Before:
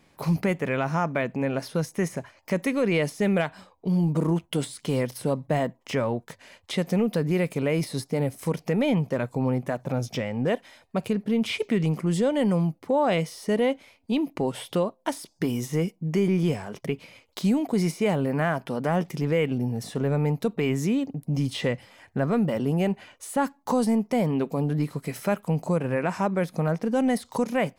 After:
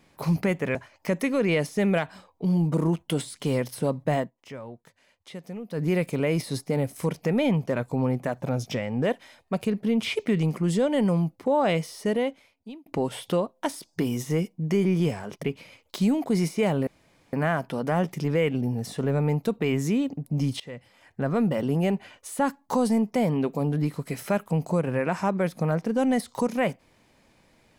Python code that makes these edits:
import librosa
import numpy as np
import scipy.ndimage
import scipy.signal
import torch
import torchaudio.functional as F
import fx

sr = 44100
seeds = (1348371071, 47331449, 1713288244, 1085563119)

y = fx.edit(x, sr, fx.cut(start_s=0.75, length_s=1.43),
    fx.fade_down_up(start_s=5.62, length_s=1.64, db=-13.5, fade_s=0.12),
    fx.fade_out_span(start_s=13.42, length_s=0.87),
    fx.insert_room_tone(at_s=18.3, length_s=0.46),
    fx.fade_in_from(start_s=21.57, length_s=0.81, floor_db=-21.5), tone=tone)